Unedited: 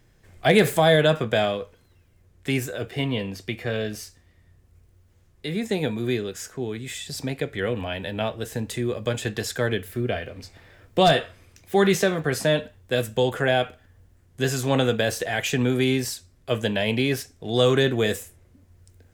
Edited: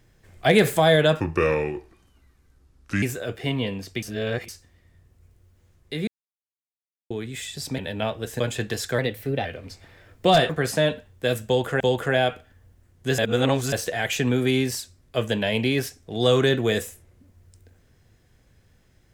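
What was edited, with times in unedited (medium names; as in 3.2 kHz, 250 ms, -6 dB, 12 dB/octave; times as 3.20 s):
1.20–2.55 s: speed 74%
3.55–4.01 s: reverse
5.60–6.63 s: mute
7.31–7.97 s: delete
8.58–9.06 s: delete
9.65–10.18 s: speed 113%
11.22–12.17 s: delete
13.14–13.48 s: loop, 2 plays
14.52–15.06 s: reverse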